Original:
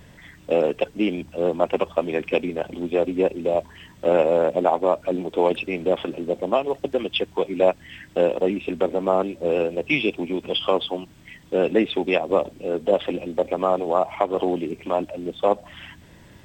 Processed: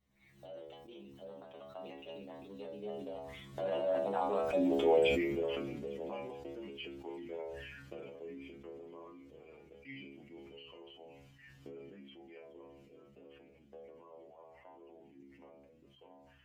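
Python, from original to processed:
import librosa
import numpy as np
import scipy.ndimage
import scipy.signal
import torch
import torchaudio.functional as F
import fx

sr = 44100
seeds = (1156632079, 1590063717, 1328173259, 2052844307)

y = fx.recorder_agc(x, sr, target_db=-11.0, rise_db_per_s=40.0, max_gain_db=30)
y = fx.doppler_pass(y, sr, speed_mps=39, closest_m=14.0, pass_at_s=4.61)
y = fx.low_shelf(y, sr, hz=140.0, db=3.5)
y = fx.stiff_resonator(y, sr, f0_hz=67.0, decay_s=0.55, stiffness=0.002)
y = fx.echo_wet_highpass(y, sr, ms=424, feedback_pct=78, hz=3700.0, wet_db=-18.0)
y = fx.sustainer(y, sr, db_per_s=29.0)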